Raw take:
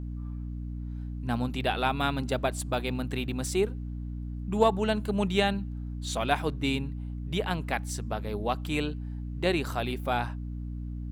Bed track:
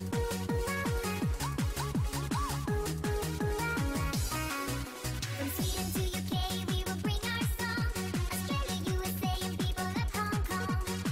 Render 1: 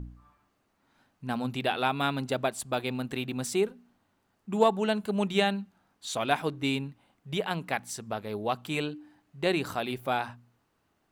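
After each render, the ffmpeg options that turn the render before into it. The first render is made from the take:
ffmpeg -i in.wav -af "bandreject=frequency=60:width_type=h:width=4,bandreject=frequency=120:width_type=h:width=4,bandreject=frequency=180:width_type=h:width=4,bandreject=frequency=240:width_type=h:width=4,bandreject=frequency=300:width_type=h:width=4" out.wav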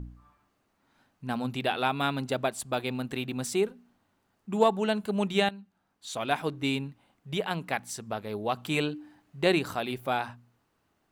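ffmpeg -i in.wav -filter_complex "[0:a]asplit=4[link_01][link_02][link_03][link_04];[link_01]atrim=end=5.49,asetpts=PTS-STARTPTS,afade=type=out:start_time=5.486:duration=0.004:curve=hsin:silence=0.211349[link_05];[link_02]atrim=start=5.49:end=8.572,asetpts=PTS-STARTPTS,afade=type=in:duration=1.04:silence=0.211349[link_06];[link_03]atrim=start=8.568:end=9.592,asetpts=PTS-STARTPTS,volume=3dB[link_07];[link_04]atrim=start=9.588[link_08];[link_05][link_06]concat=n=2:v=0:a=1[link_09];[link_09][link_07]acrossfade=duration=0.004:curve1=hsin:curve2=hsin[link_10];[link_10][link_08]acrossfade=duration=0.004:curve1=hsin:curve2=hsin" out.wav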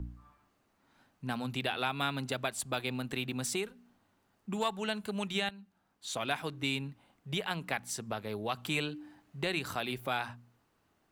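ffmpeg -i in.wav -filter_complex "[0:a]acrossover=split=110|1200[link_01][link_02][link_03];[link_02]acompressor=threshold=-35dB:ratio=6[link_04];[link_03]alimiter=limit=-21.5dB:level=0:latency=1:release=178[link_05];[link_01][link_04][link_05]amix=inputs=3:normalize=0" out.wav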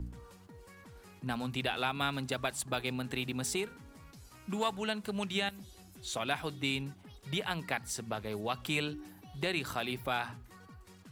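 ffmpeg -i in.wav -i bed.wav -filter_complex "[1:a]volume=-21.5dB[link_01];[0:a][link_01]amix=inputs=2:normalize=0" out.wav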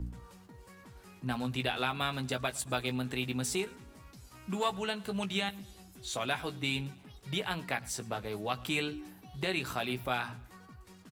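ffmpeg -i in.wav -filter_complex "[0:a]asplit=2[link_01][link_02];[link_02]adelay=16,volume=-8dB[link_03];[link_01][link_03]amix=inputs=2:normalize=0,aecho=1:1:111|222|333:0.0631|0.0284|0.0128" out.wav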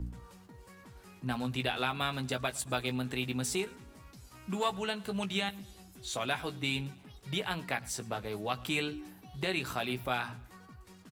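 ffmpeg -i in.wav -af anull out.wav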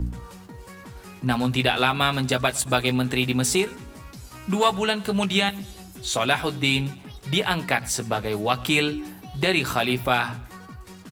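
ffmpeg -i in.wav -af "volume=11.5dB" out.wav

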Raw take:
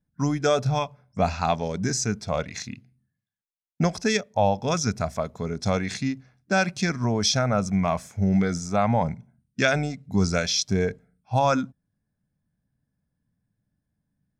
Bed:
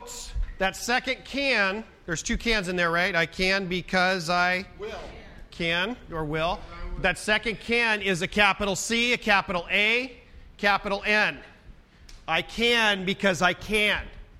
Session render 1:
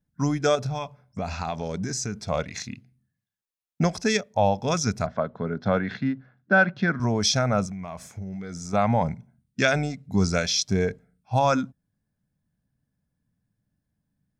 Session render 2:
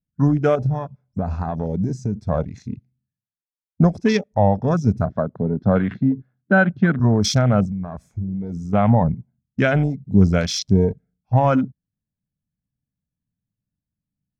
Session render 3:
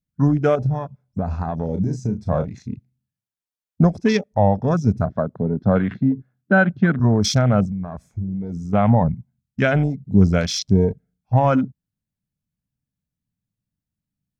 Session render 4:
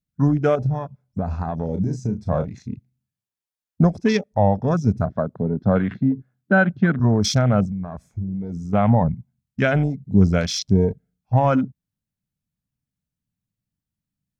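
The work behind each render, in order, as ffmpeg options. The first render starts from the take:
ffmpeg -i in.wav -filter_complex "[0:a]asettb=1/sr,asplit=3[link_01][link_02][link_03];[link_01]atrim=end=0.554[link_04];[link_02]atrim=start=0.55:end=2.26,asetpts=PTS-STARTPTS,afade=type=in:duration=0.004:curve=qsin,afade=type=out:start_time=1.706:duration=0.004:curve=qsin,acompressor=threshold=-25dB:ratio=6:attack=3.2:release=140:knee=1:detection=peak[link_05];[link_03]atrim=start=2.256[link_06];[link_04][link_05]acrossfade=duration=0.004:curve1=hsin:curve2=qsin[link_07];[link_07][link_06]acrossfade=duration=0.004:curve1=qsin:curve2=hsin,asettb=1/sr,asplit=3[link_08][link_09][link_10];[link_08]atrim=end=5.064[link_11];[link_09]atrim=start=5.06:end=7,asetpts=PTS-STARTPTS,afade=type=in:duration=0.004:curve=qsin,afade=type=out:start_time=1.936:duration=0.004:curve=qsin,highpass=frequency=100:width=0.5412,highpass=frequency=100:width=1.3066,equalizer=frequency=230:width_type=q:width=4:gain=3,equalizer=frequency=550:width_type=q:width=4:gain=3,equalizer=frequency=1500:width_type=q:width=4:gain=8,equalizer=frequency=2400:width_type=q:width=4:gain=-9,lowpass=frequency=3200:width=0.5412,lowpass=frequency=3200:width=1.3066[link_12];[link_10]atrim=start=6.996[link_13];[link_11][link_12]acrossfade=duration=0.004:curve1=hsin:curve2=qsin[link_14];[link_14][link_13]acrossfade=duration=0.004:curve1=qsin:curve2=hsin,asettb=1/sr,asplit=3[link_15][link_16][link_17];[link_15]atrim=end=7.654[link_18];[link_16]atrim=start=7.65:end=8.73,asetpts=PTS-STARTPTS,afade=type=in:duration=0.004:curve=qsin,afade=type=out:start_time=1.076:duration=0.004:curve=qsin,acompressor=threshold=-31dB:ratio=12:attack=3.2:release=140:knee=1:detection=peak[link_19];[link_17]atrim=start=8.726[link_20];[link_18][link_19]acrossfade=duration=0.004:curve1=hsin:curve2=qsin[link_21];[link_21][link_20]acrossfade=duration=0.004:curve1=qsin:curve2=hsin" out.wav
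ffmpeg -i in.wav -af "afwtdn=0.0251,lowshelf=frequency=440:gain=10" out.wav
ffmpeg -i in.wav -filter_complex "[0:a]asettb=1/sr,asplit=3[link_01][link_02][link_03];[link_01]atrim=end=1.654[link_04];[link_02]atrim=start=1.65:end=2.55,asetpts=PTS-STARTPTS,afade=type=in:duration=0.004:curve=qsin,afade=type=out:start_time=0.896:duration=0.004:curve=qsin,asplit=2[link_05][link_06];[link_06]adelay=33,volume=-7dB[link_07];[link_05][link_07]amix=inputs=2:normalize=0,atrim=end_sample=39690[link_08];[link_03]atrim=start=2.546[link_09];[link_04][link_08]acrossfade=duration=0.004:curve1=hsin:curve2=qsin[link_10];[link_10][link_09]acrossfade=duration=0.004:curve1=qsin:curve2=hsin,asettb=1/sr,asplit=3[link_11][link_12][link_13];[link_11]atrim=end=9.084[link_14];[link_12]atrim=start=9.08:end=9.62,asetpts=PTS-STARTPTS,afade=type=in:duration=0.004:curve=qsin,afade=type=out:start_time=0.536:duration=0.004:curve=qsin,equalizer=frequency=420:width=1.3:gain=-11[link_15];[link_13]atrim=start=9.616[link_16];[link_14][link_15]acrossfade=duration=0.004:curve1=hsin:curve2=qsin[link_17];[link_17][link_16]acrossfade=duration=0.004:curve1=qsin:curve2=hsin" out.wav
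ffmpeg -i in.wav -af "volume=-1dB" out.wav

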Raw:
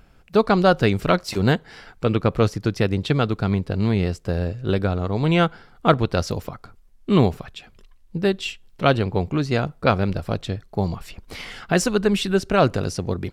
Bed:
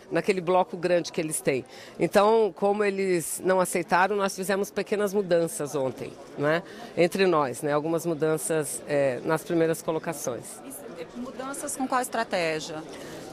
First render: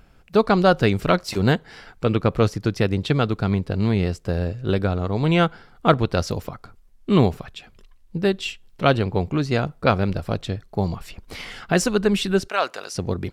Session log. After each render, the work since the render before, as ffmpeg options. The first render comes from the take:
ffmpeg -i in.wav -filter_complex "[0:a]asplit=3[link_01][link_02][link_03];[link_01]afade=type=out:start_time=12.47:duration=0.02[link_04];[link_02]highpass=830,afade=type=in:start_time=12.47:duration=0.02,afade=type=out:start_time=12.94:duration=0.02[link_05];[link_03]afade=type=in:start_time=12.94:duration=0.02[link_06];[link_04][link_05][link_06]amix=inputs=3:normalize=0" out.wav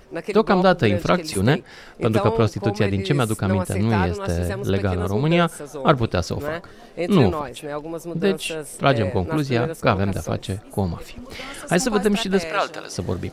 ffmpeg -i in.wav -i bed.wav -filter_complex "[1:a]volume=-4dB[link_01];[0:a][link_01]amix=inputs=2:normalize=0" out.wav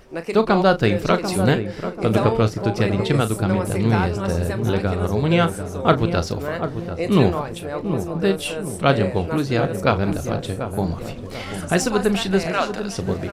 ffmpeg -i in.wav -filter_complex "[0:a]asplit=2[link_01][link_02];[link_02]adelay=36,volume=-12dB[link_03];[link_01][link_03]amix=inputs=2:normalize=0,asplit=2[link_04][link_05];[link_05]adelay=740,lowpass=frequency=1000:poles=1,volume=-8dB,asplit=2[link_06][link_07];[link_07]adelay=740,lowpass=frequency=1000:poles=1,volume=0.49,asplit=2[link_08][link_09];[link_09]adelay=740,lowpass=frequency=1000:poles=1,volume=0.49,asplit=2[link_10][link_11];[link_11]adelay=740,lowpass=frequency=1000:poles=1,volume=0.49,asplit=2[link_12][link_13];[link_13]adelay=740,lowpass=frequency=1000:poles=1,volume=0.49,asplit=2[link_14][link_15];[link_15]adelay=740,lowpass=frequency=1000:poles=1,volume=0.49[link_16];[link_04][link_06][link_08][link_10][link_12][link_14][link_16]amix=inputs=7:normalize=0" out.wav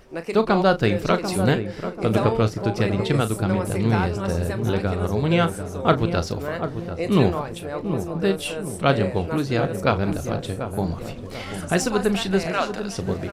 ffmpeg -i in.wav -af "volume=-2dB" out.wav

